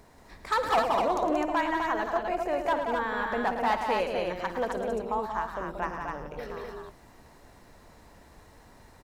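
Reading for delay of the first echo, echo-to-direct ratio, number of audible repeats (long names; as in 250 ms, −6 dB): 56 ms, −1.0 dB, 4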